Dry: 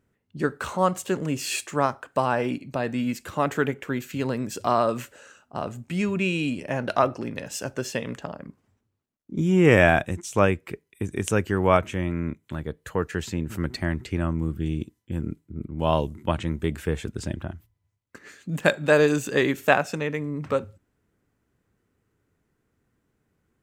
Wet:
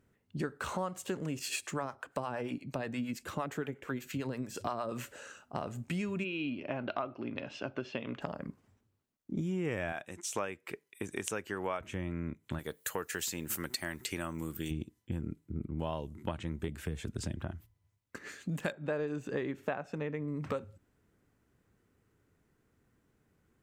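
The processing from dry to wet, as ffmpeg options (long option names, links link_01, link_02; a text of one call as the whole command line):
ffmpeg -i in.wav -filter_complex "[0:a]asettb=1/sr,asplit=3[link_01][link_02][link_03];[link_01]atrim=end=1.394[link_04];[link_02]atrim=start=1.39:end=4.92,asetpts=PTS-STARTPTS,afade=type=in:duration=0.004:curve=qsin,afade=type=out:start_time=3.526:duration=0.004:curve=qsin,acrossover=split=530[link_05][link_06];[link_05]aeval=exprs='val(0)*(1-0.7/2+0.7/2*cos(2*PI*8.6*n/s))':channel_layout=same[link_07];[link_06]aeval=exprs='val(0)*(1-0.7/2-0.7/2*cos(2*PI*8.6*n/s))':channel_layout=same[link_08];[link_07][link_08]amix=inputs=2:normalize=0[link_09];[link_03]atrim=start=4.916[link_10];[link_04][link_09]acrossfade=duration=0.004:curve1=hsin:curve2=qsin[link_11];[link_11][link_10]acrossfade=duration=0.004:curve1=qsin:curve2=hsin,asplit=3[link_12][link_13][link_14];[link_12]afade=type=out:start_time=6.23:duration=0.02[link_15];[link_13]highpass=140,equalizer=frequency=170:width_type=q:width=4:gain=-10,equalizer=frequency=480:width_type=q:width=4:gain=-8,equalizer=frequency=890:width_type=q:width=4:gain=-4,equalizer=frequency=1800:width_type=q:width=4:gain=-9,lowpass=frequency=3400:width=0.5412,lowpass=frequency=3400:width=1.3066,afade=type=in:start_time=6.23:duration=0.02,afade=type=out:start_time=8.2:duration=0.02[link_16];[link_14]afade=type=in:start_time=8.2:duration=0.02[link_17];[link_15][link_16][link_17]amix=inputs=3:normalize=0,asettb=1/sr,asplit=3[link_18][link_19][link_20];[link_18]atrim=end=9.924[link_21];[link_19]atrim=start=9.92:end=11.81,asetpts=PTS-STARTPTS,afade=type=in:duration=0.004:curve=qsin,afade=type=out:start_time=1.886:duration=0.004:curve=qsin,highpass=frequency=570:poles=1[link_22];[link_20]atrim=start=11.806[link_23];[link_21][link_22]acrossfade=duration=0.004:curve1=hsin:curve2=qsin[link_24];[link_24][link_23]acrossfade=duration=0.004:curve1=qsin:curve2=hsin,asplit=3[link_25][link_26][link_27];[link_25]afade=type=out:start_time=12.58:duration=0.02[link_28];[link_26]aemphasis=mode=production:type=riaa,afade=type=in:start_time=12.58:duration=0.02,afade=type=out:start_time=14.7:duration=0.02[link_29];[link_27]afade=type=in:start_time=14.7:duration=0.02[link_30];[link_28][link_29][link_30]amix=inputs=3:normalize=0,asettb=1/sr,asplit=3[link_31][link_32][link_33];[link_31]atrim=end=16.684[link_34];[link_32]atrim=start=16.68:end=17.42,asetpts=PTS-STARTPTS,afade=type=in:duration=0.004:curve=qsin,afade=type=out:start_time=0.736:duration=0.004:curve=qsin,acrossover=split=290|3000[link_35][link_36][link_37];[link_36]acompressor=threshold=-40dB:ratio=2.5:attack=3.2:release=140:knee=2.83:detection=peak[link_38];[link_35][link_38][link_37]amix=inputs=3:normalize=0[link_39];[link_33]atrim=start=17.416[link_40];[link_34][link_39]acrossfade=duration=0.004:curve1=hsin:curve2=qsin[link_41];[link_41][link_40]acrossfade=duration=0.004:curve1=qsin:curve2=hsin,asettb=1/sr,asplit=3[link_42][link_43][link_44];[link_42]atrim=end=18.724[link_45];[link_43]atrim=start=18.72:end=20.28,asetpts=PTS-STARTPTS,afade=type=in:duration=0.004:curve=qsin,afade=type=out:start_time=1.556:duration=0.004:curve=qsin,lowpass=frequency=1300:poles=1[link_46];[link_44]atrim=start=20.276[link_47];[link_45][link_46]acrossfade=duration=0.004:curve1=hsin:curve2=qsin[link_48];[link_48][link_47]acrossfade=duration=0.004:curve1=qsin:curve2=hsin,acompressor=threshold=-33dB:ratio=6" out.wav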